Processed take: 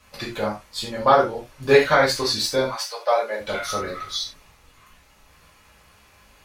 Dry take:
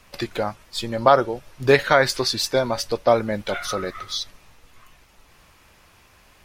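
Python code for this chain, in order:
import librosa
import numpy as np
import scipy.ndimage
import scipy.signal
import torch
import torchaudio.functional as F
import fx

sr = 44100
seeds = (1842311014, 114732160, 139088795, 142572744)

y = fx.highpass(x, sr, hz=fx.line((2.65, 970.0), (3.4, 360.0)), slope=24, at=(2.65, 3.4), fade=0.02)
y = fx.rev_gated(y, sr, seeds[0], gate_ms=120, shape='falling', drr_db=-5.5)
y = y * librosa.db_to_amplitude(-6.5)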